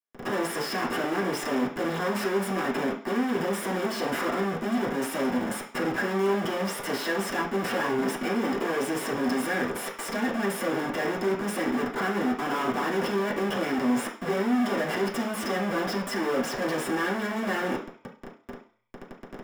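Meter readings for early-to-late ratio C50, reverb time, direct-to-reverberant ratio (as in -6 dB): 8.0 dB, 0.45 s, -6.0 dB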